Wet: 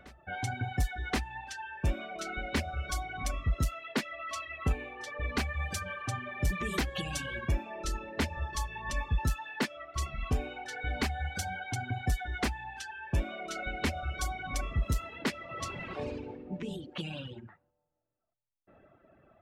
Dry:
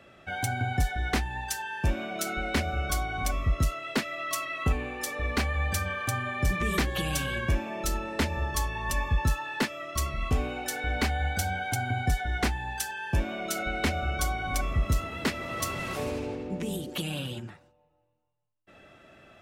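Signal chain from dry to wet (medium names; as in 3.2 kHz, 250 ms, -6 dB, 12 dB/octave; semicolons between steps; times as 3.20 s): level-controlled noise filter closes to 1.1 kHz, open at -22.5 dBFS; reverse echo 1076 ms -22.5 dB; reverb removal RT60 1.4 s; trim -3 dB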